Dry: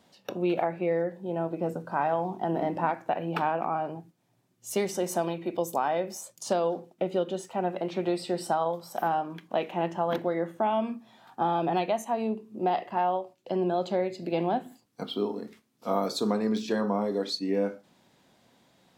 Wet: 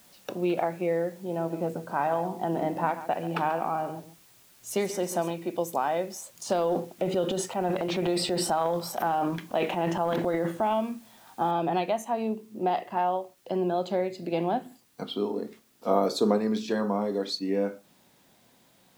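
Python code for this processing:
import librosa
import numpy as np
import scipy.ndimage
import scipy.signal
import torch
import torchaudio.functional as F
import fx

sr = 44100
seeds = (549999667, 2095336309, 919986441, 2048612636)

y = fx.echo_single(x, sr, ms=138, db=-13.5, at=(1.23, 5.31))
y = fx.transient(y, sr, attack_db=0, sustain_db=11, at=(6.34, 10.8))
y = fx.noise_floor_step(y, sr, seeds[0], at_s=11.51, before_db=-58, after_db=-66, tilt_db=0.0)
y = fx.peak_eq(y, sr, hz=440.0, db=6.0, octaves=1.6, at=(15.31, 16.38))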